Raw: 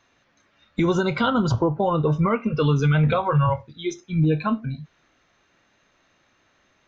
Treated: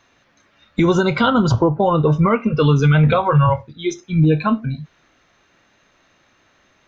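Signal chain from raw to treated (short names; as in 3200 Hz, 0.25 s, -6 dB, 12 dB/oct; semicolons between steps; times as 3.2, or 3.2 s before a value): 1.69–3.83 mismatched tape noise reduction decoder only; gain +5.5 dB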